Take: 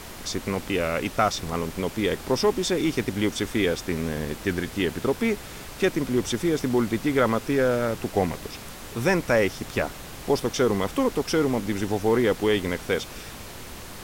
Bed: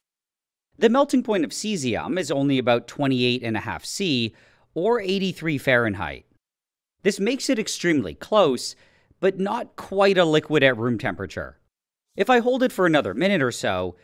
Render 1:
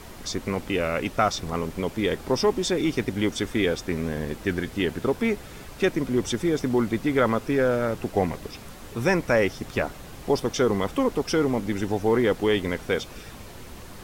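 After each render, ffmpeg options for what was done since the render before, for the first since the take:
-af "afftdn=nr=6:nf=-40"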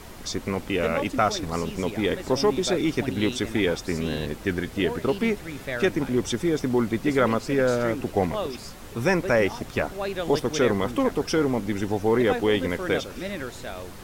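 -filter_complex "[1:a]volume=-12.5dB[a];[0:a][a]amix=inputs=2:normalize=0"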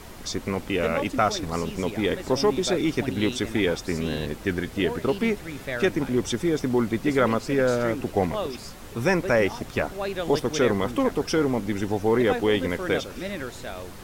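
-af anull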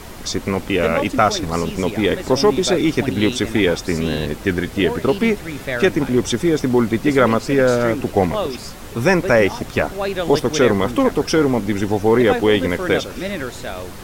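-af "volume=7dB"

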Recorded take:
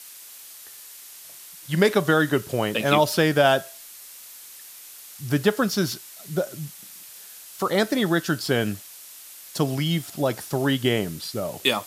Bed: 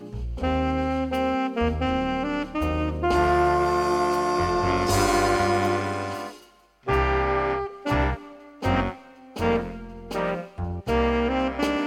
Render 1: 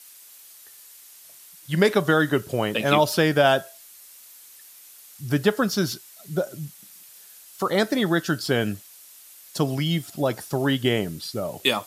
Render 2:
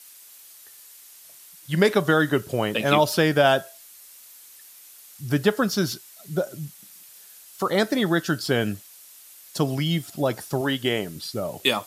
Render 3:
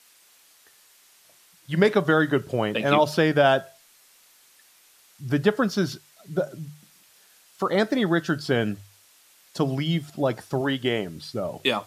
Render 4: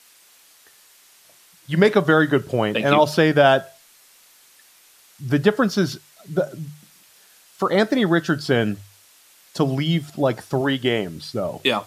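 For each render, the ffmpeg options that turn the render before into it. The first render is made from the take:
-af "afftdn=nr=6:nf=-44"
-filter_complex "[0:a]asettb=1/sr,asplit=3[a][b][c];[a]atrim=end=10.614[d];[b]atrim=start=10.61:end=11.16,asetpts=PTS-STARTPTS,afade=t=in:d=0.004:c=qsin,afade=t=out:st=0.546:d=0.004:c=qsin,lowshelf=f=230:g=-8[e];[c]atrim=start=11.156[f];[d][e]acrossfade=d=0.004:c1=hsin:c2=qsin[g];[g][f]acrossfade=d=0.004:c1=qsin:c2=hsin"
-af "aemphasis=mode=reproduction:type=50kf,bandreject=f=50:t=h:w=6,bandreject=f=100:t=h:w=6,bandreject=f=150:t=h:w=6"
-af "volume=4dB,alimiter=limit=-3dB:level=0:latency=1"

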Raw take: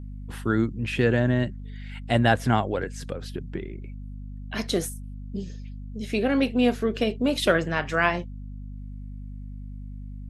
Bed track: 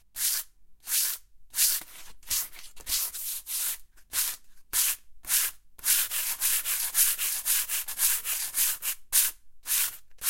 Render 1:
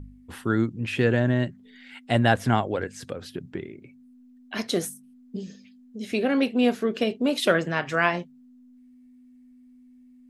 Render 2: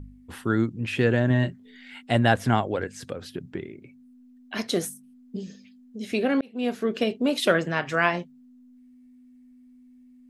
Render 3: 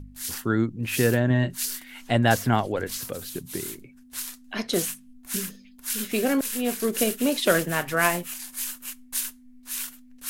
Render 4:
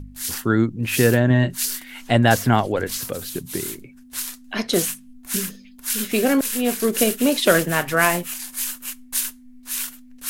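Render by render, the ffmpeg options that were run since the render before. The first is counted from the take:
-af "bandreject=f=50:t=h:w=4,bandreject=f=100:t=h:w=4,bandreject=f=150:t=h:w=4,bandreject=f=200:t=h:w=4"
-filter_complex "[0:a]asettb=1/sr,asplit=3[a][b][c];[a]atrim=end=1.284[d];[b]atrim=start=1.28:end=2.03,asetpts=PTS-STARTPTS,afade=t=in:d=0.004:c=qsin,afade=t=out:st=0.746:d=0.004:c=qsin,asplit=2[e][f];[f]adelay=23,volume=-5.5dB[g];[e][g]amix=inputs=2:normalize=0,atrim=end_sample=33075[h];[c]atrim=start=2.026[i];[d][h]acrossfade=d=0.004:c1=hsin:c2=qsin[j];[j][i]acrossfade=d=0.004:c1=qsin:c2=hsin,asplit=2[k][l];[k]atrim=end=6.41,asetpts=PTS-STARTPTS,afade=t=out:st=6.406:d=0.004:c=hsin[m];[l]atrim=start=6.41,asetpts=PTS-STARTPTS,afade=t=in:d=0.48[n];[m][n]concat=n=2:v=0:a=1"
-filter_complex "[1:a]volume=-6dB[a];[0:a][a]amix=inputs=2:normalize=0"
-af "volume=5dB,alimiter=limit=-2dB:level=0:latency=1"

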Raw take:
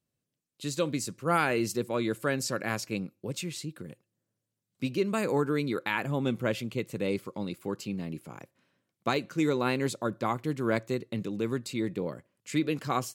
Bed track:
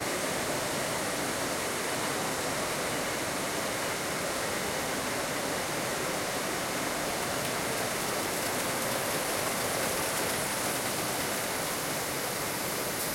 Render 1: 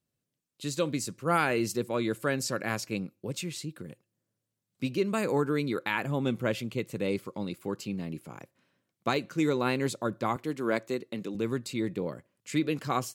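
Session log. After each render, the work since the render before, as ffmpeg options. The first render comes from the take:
-filter_complex "[0:a]asettb=1/sr,asplit=3[a][b][c];[a]atrim=end=10.364[d];[b]atrim=start=10.36:end=11.35,asetpts=PTS-STARTPTS,afade=t=in:d=0.004:c=qsin,afade=t=out:st=0.986:d=0.004:c=qsin,highpass=210[e];[c]atrim=start=11.346[f];[d][e]acrossfade=d=0.004:c1=hsin:c2=qsin[g];[g][f]acrossfade=d=0.004:c1=qsin:c2=hsin"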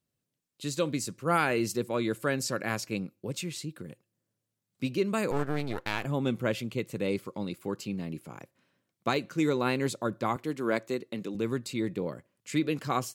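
-filter_complex "[0:a]asettb=1/sr,asplit=3[a][b][c];[a]atrim=end=5.314[d];[b]atrim=start=5.31:end=6.05,asetpts=PTS-STARTPTS,afade=t=in:d=0.004:c=qsin,afade=t=out:st=0.736:d=0.004:c=qsin,aeval=exprs='max(val(0),0)':c=same[e];[c]atrim=start=6.046[f];[d][e]acrossfade=d=0.004:c1=hsin:c2=qsin[g];[g][f]acrossfade=d=0.004:c1=qsin:c2=hsin"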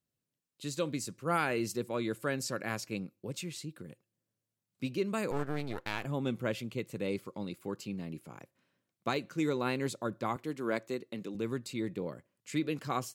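-af "volume=-4.5dB"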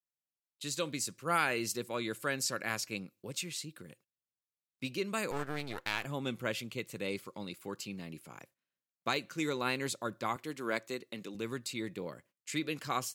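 -af "agate=range=-18dB:threshold=-60dB:ratio=16:detection=peak,tiltshelf=f=970:g=-5"

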